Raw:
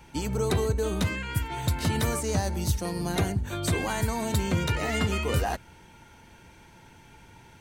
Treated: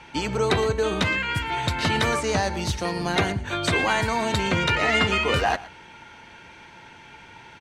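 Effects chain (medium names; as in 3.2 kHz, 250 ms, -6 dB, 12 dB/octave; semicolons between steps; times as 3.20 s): low-pass 2.9 kHz 12 dB/octave; tilt EQ +3 dB/octave; on a send: delay 116 ms -18.5 dB; on the sum: trim +8.5 dB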